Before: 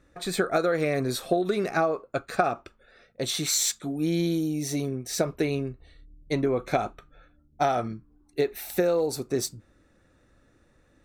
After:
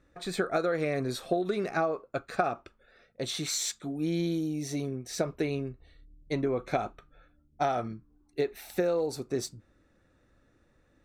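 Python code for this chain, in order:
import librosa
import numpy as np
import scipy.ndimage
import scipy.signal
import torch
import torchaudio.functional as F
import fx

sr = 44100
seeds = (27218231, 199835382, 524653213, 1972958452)

y = fx.high_shelf(x, sr, hz=10000.0, db=-11.0)
y = y * 10.0 ** (-4.0 / 20.0)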